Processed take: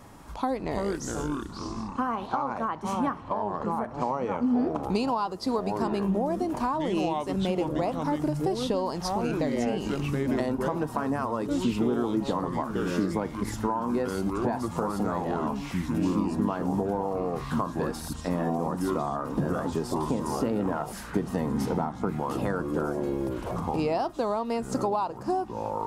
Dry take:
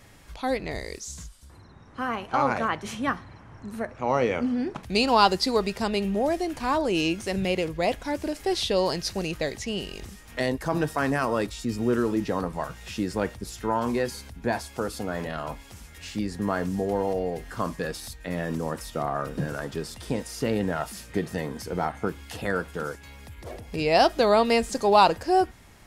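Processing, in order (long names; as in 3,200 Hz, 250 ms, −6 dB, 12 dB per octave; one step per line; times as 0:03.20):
delay with pitch and tempo change per echo 191 ms, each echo −5 semitones, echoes 3, each echo −6 dB
graphic EQ with 10 bands 1,000 Hz +11 dB, 2,000 Hz −6 dB, 4,000 Hz −3 dB
downward compressor 8 to 1, threshold −27 dBFS, peak gain reduction 20.5 dB
parametric band 250 Hz +7 dB 1.4 octaves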